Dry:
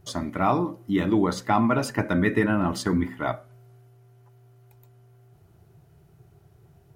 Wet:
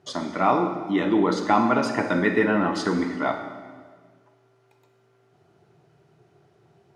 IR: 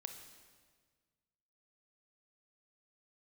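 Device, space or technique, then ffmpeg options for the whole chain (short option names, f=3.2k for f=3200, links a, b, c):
supermarket ceiling speaker: -filter_complex "[0:a]highpass=240,lowpass=5.5k[a];[1:a]atrim=start_sample=2205[b];[a][b]afir=irnorm=-1:irlink=0,volume=7dB"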